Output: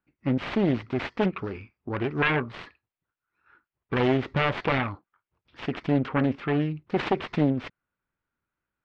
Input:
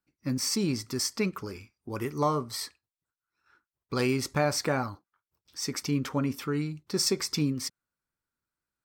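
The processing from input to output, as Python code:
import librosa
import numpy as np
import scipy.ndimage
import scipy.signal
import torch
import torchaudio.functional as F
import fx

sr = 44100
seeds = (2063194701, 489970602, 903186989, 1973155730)

y = fx.self_delay(x, sr, depth_ms=0.86)
y = scipy.signal.sosfilt(scipy.signal.butter(4, 2900.0, 'lowpass', fs=sr, output='sos'), y)
y = y * librosa.db_to_amplitude(5.5)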